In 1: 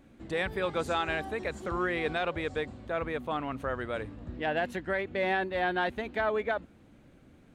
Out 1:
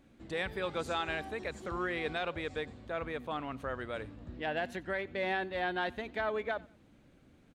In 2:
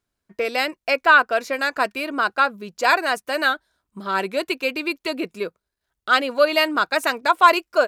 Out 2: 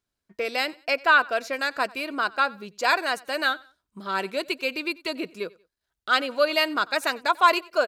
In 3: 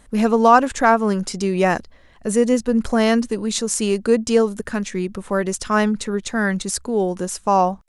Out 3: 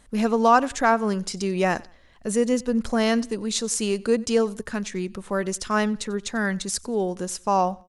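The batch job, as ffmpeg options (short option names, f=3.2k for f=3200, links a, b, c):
-af "equalizer=f=4.5k:w=0.77:g=3.5,aecho=1:1:92|184:0.0668|0.0214,volume=-5dB"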